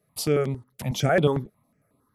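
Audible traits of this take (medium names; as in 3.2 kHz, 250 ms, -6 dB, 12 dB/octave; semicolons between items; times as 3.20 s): notches that jump at a steady rate 11 Hz 260–5900 Hz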